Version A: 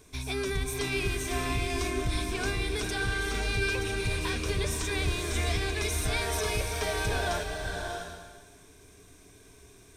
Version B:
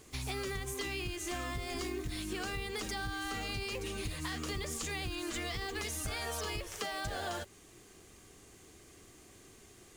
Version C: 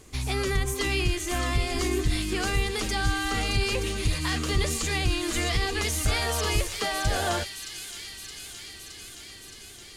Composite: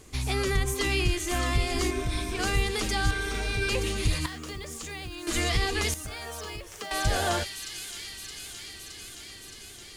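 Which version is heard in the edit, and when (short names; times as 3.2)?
C
1.91–2.39 from A
3.11–3.69 from A
4.26–5.27 from B
5.94–6.91 from B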